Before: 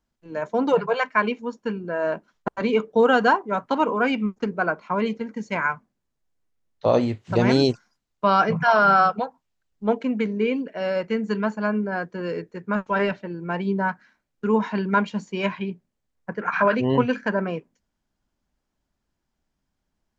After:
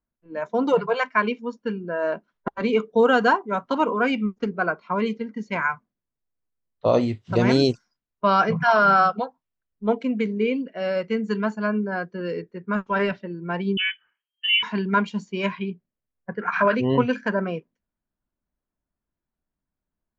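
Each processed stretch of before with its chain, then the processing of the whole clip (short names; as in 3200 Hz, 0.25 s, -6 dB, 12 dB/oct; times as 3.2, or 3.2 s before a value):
13.77–14.63 air absorption 350 m + inverted band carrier 3200 Hz
whole clip: spectral noise reduction 8 dB; low-pass opened by the level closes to 1900 Hz, open at -19.5 dBFS; notch 820 Hz, Q 12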